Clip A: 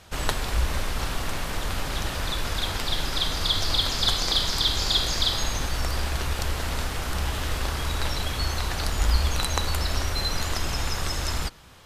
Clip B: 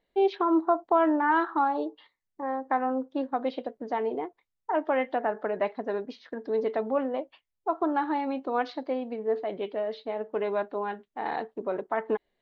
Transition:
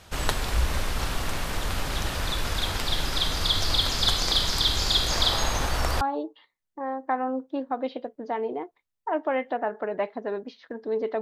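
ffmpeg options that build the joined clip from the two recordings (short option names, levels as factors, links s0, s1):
-filter_complex "[0:a]asettb=1/sr,asplit=3[s0][s1][s2];[s0]atrim=end=5.104[s3];[s1]atrim=start=5.1:end=6.01,asetpts=PTS-STARTPTS,afade=t=in:d=0.004:c=qsin,afade=t=out:st=0.906:d=0.004:c=qsin,equalizer=f=790:w=0.66:g=6[s4];[s2]atrim=start=6.006[s5];[s3][s4]acrossfade=d=0.004:c1=hsin:c2=qsin[s6];[s6][s5]acrossfade=d=0.004:c1=qsin:c2=hsin,apad=whole_dur=11.21,atrim=end=11.21,atrim=end=6.012[s7];[1:a]atrim=start=1.628:end=6.83[s8];[s7][s8]acrossfade=d=0.004:c1=hsin:c2=hsin"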